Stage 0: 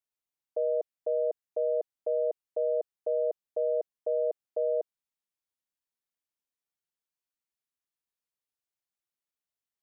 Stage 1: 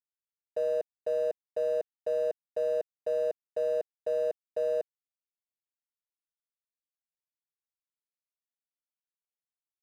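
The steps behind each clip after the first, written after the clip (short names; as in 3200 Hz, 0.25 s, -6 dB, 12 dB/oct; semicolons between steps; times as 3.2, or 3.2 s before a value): crossover distortion -48 dBFS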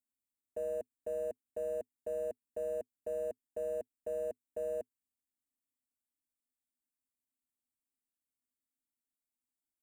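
EQ curve 110 Hz 0 dB, 160 Hz -16 dB, 250 Hz +12 dB, 430 Hz -12 dB, 910 Hz -10 dB, 1400 Hz -16 dB, 2300 Hz -10 dB, 4600 Hz -27 dB, 7700 Hz +1 dB, 11000 Hz -1 dB; gain +3.5 dB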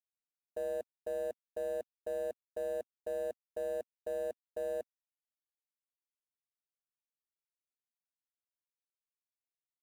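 G.711 law mismatch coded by A; gain +2.5 dB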